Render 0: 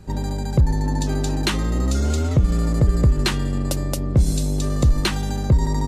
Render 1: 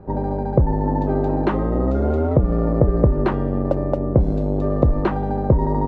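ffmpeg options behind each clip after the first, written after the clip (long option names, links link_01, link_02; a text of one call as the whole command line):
ffmpeg -i in.wav -af "lowpass=1200,equalizer=frequency=590:width_type=o:width=2.4:gain=13,volume=-2.5dB" out.wav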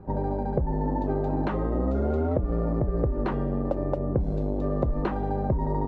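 ffmpeg -i in.wav -af "acompressor=threshold=-17dB:ratio=6,flanger=delay=0.7:depth=4.7:regen=-60:speed=0.72:shape=triangular" out.wav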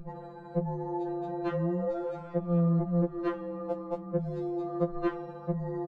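ffmpeg -i in.wav -filter_complex "[0:a]acrossover=split=140|490[link_01][link_02][link_03];[link_01]acompressor=mode=upward:threshold=-29dB:ratio=2.5[link_04];[link_03]aecho=1:1:1083:0.0891[link_05];[link_04][link_02][link_05]amix=inputs=3:normalize=0,afftfilt=real='re*2.83*eq(mod(b,8),0)':imag='im*2.83*eq(mod(b,8),0)':win_size=2048:overlap=0.75" out.wav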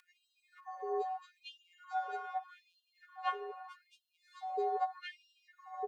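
ffmpeg -i in.wav -af "afftfilt=real='hypot(re,im)*cos(PI*b)':imag='0':win_size=512:overlap=0.75,afreqshift=62,afftfilt=real='re*gte(b*sr/1024,390*pow(2600/390,0.5+0.5*sin(2*PI*0.8*pts/sr)))':imag='im*gte(b*sr/1024,390*pow(2600/390,0.5+0.5*sin(2*PI*0.8*pts/sr)))':win_size=1024:overlap=0.75,volume=6.5dB" out.wav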